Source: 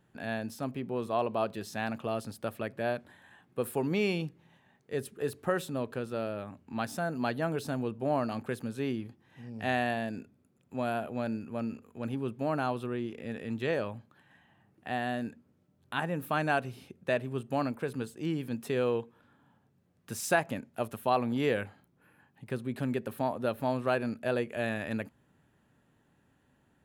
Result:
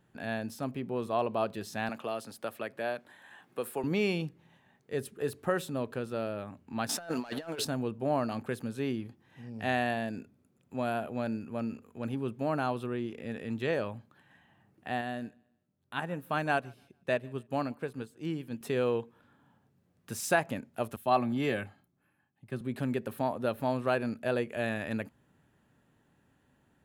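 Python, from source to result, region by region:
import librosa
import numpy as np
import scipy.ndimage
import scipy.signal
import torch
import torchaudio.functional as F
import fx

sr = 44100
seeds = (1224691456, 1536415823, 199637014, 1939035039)

y = fx.chain(x, sr, fx.highpass(hz=440.0, slope=6),
    fx.band_squash(depth_pct=40), at=(1.89, 3.84))
y = fx.chain(y, sr, fx.weighting(curve='A'),
    fx.leveller(passes=2),
    fx.over_compress(threshold_db=-35.0, ratio=-0.5), at=(6.89, 7.65))
y = fx.chain(y, sr, fx.echo_feedback(ms=147, feedback_pct=37, wet_db=-22.0),
    fx.upward_expand(threshold_db=-47.0, expansion=1.5), at=(15.01, 18.61))
y = fx.chain(y, sr, fx.notch_comb(f0_hz=480.0),
    fx.band_widen(depth_pct=40), at=(20.96, 22.61))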